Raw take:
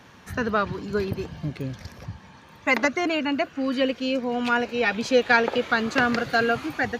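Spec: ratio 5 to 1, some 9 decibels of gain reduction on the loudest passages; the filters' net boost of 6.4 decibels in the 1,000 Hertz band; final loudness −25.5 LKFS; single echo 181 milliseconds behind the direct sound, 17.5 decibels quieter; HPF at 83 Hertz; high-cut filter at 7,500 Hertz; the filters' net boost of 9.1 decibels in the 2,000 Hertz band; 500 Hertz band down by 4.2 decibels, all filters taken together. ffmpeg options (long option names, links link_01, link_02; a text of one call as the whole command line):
ffmpeg -i in.wav -af "highpass=83,lowpass=7500,equalizer=frequency=500:width_type=o:gain=-8,equalizer=frequency=1000:width_type=o:gain=8.5,equalizer=frequency=2000:width_type=o:gain=9,acompressor=threshold=-17dB:ratio=5,aecho=1:1:181:0.133,volume=-2.5dB" out.wav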